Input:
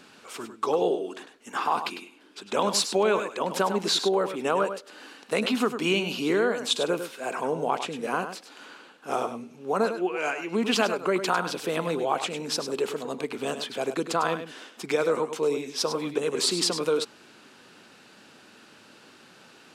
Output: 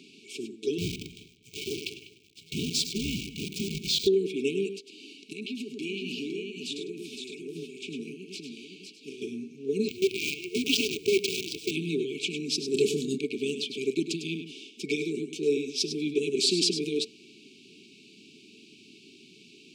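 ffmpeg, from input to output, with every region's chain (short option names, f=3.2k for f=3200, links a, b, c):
-filter_complex "[0:a]asettb=1/sr,asplit=3[a][b][c];[a]atrim=end=0.784[d];[b]atrim=start=0.78:end=4.07,asetpts=PTS-STARTPTS,afade=t=in:d=0.004:c=qsin,afade=t=out:st=3.286:d=0.004:c=qsin,aeval=exprs='val(0)*sin(2*PI*360*n/s)':c=same,acrusher=bits=6:dc=4:mix=0:aa=0.000001,asplit=2[e][f];[f]adelay=197,lowpass=f=2.3k:p=1,volume=-13dB,asplit=2[g][h];[h]adelay=197,lowpass=f=2.3k:p=1,volume=0.22,asplit=2[i][j];[j]adelay=197,lowpass=f=2.3k:p=1,volume=0.22[k];[e][g][i][k]amix=inputs=4:normalize=0,atrim=end_sample=145089[l];[c]atrim=start=4.066[m];[d][l]acrossfade=d=0.004:c1=hsin:c2=qsin[n];[n][m]acrossfade=d=0.004:c1=qsin:c2=hsin,asettb=1/sr,asplit=3[o][p][q];[o]atrim=end=5.094[r];[p]atrim=start=5.09:end=9.22,asetpts=PTS-STARTPTS,afade=t=in:d=0.004:c=qsin,afade=t=out:st=4.126:d=0.004:c=qsin,acompressor=threshold=-33dB:ratio=12:attack=3.2:release=140:knee=1:detection=peak,aecho=1:1:510:0.562,atrim=end_sample=182133[s];[q]atrim=start=9.216[t];[r][s]acrossfade=d=0.004:c1=hsin:c2=qsin[u];[u][t]acrossfade=d=0.004:c1=qsin:c2=hsin,asettb=1/sr,asplit=3[v][w][x];[v]atrim=end=9.884[y];[w]atrim=start=9.88:end=11.71,asetpts=PTS-STARTPTS,afade=t=in:d=0.004:c=qsin,afade=t=out:st=1.826:d=0.004:c=qsin,highpass=f=260:w=0.5412,highpass=f=260:w=1.3066,afreqshift=21,acrusher=bits=5:dc=4:mix=0:aa=0.000001[z];[x]atrim=start=11.706[aa];[y][z]acrossfade=d=0.004:c1=hsin:c2=qsin[ab];[ab][aa]acrossfade=d=0.004:c1=qsin:c2=hsin,asettb=1/sr,asplit=3[ac][ad][ae];[ac]atrim=end=12.744[af];[ad]atrim=start=12.74:end=13.18,asetpts=PTS-STARTPTS,afade=t=in:d=0.004:c=qsin,afade=t=out:st=0.436:d=0.004:c=qsin,bass=f=250:g=11,treble=f=4k:g=10,asplit=2[ag][ah];[ah]adelay=27,volume=-9dB[ai];[ag][ai]amix=inputs=2:normalize=0,atrim=end_sample=19404[aj];[ae]atrim=start=13.176[ak];[af][aj]acrossfade=d=0.004:c1=hsin:c2=qsin[al];[al][ak]acrossfade=d=0.004:c1=qsin:c2=hsin,highpass=140,afftfilt=real='re*(1-between(b*sr/4096,450,2200))':imag='im*(1-between(b*sr/4096,450,2200))':win_size=4096:overlap=0.75,equalizer=f=12k:w=0.99:g=-14,volume=2.5dB"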